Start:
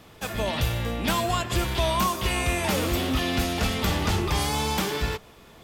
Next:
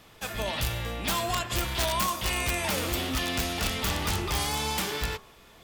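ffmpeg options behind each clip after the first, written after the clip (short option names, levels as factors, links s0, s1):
-af "equalizer=f=200:w=0.31:g=-5.5,bandreject=f=78.69:t=h:w=4,bandreject=f=157.38:t=h:w=4,bandreject=f=236.07:t=h:w=4,bandreject=f=314.76:t=h:w=4,bandreject=f=393.45:t=h:w=4,bandreject=f=472.14:t=h:w=4,bandreject=f=550.83:t=h:w=4,bandreject=f=629.52:t=h:w=4,bandreject=f=708.21:t=h:w=4,bandreject=f=786.9:t=h:w=4,bandreject=f=865.59:t=h:w=4,bandreject=f=944.28:t=h:w=4,bandreject=f=1022.97:t=h:w=4,bandreject=f=1101.66:t=h:w=4,bandreject=f=1180.35:t=h:w=4,bandreject=f=1259.04:t=h:w=4,bandreject=f=1337.73:t=h:w=4,bandreject=f=1416.42:t=h:w=4,bandreject=f=1495.11:t=h:w=4,bandreject=f=1573.8:t=h:w=4,bandreject=f=1652.49:t=h:w=4,aeval=exprs='(mod(7.94*val(0)+1,2)-1)/7.94':c=same,volume=0.891"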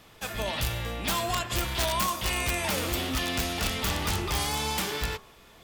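-af anull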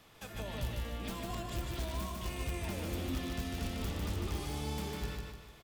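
-filter_complex "[0:a]acrossover=split=470[s0][s1];[s1]acompressor=threshold=0.00631:ratio=2.5[s2];[s0][s2]amix=inputs=2:normalize=0,asplit=2[s3][s4];[s4]aecho=0:1:150|300|450|600|750:0.668|0.287|0.124|0.0531|0.0228[s5];[s3][s5]amix=inputs=2:normalize=0,volume=0.473"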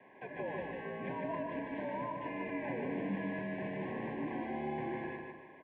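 -af "highpass=f=270:t=q:w=0.5412,highpass=f=270:t=q:w=1.307,lowpass=f=2200:t=q:w=0.5176,lowpass=f=2200:t=q:w=0.7071,lowpass=f=2200:t=q:w=1.932,afreqshift=-66,asuperstop=centerf=1300:order=20:qfactor=3,volume=1.88"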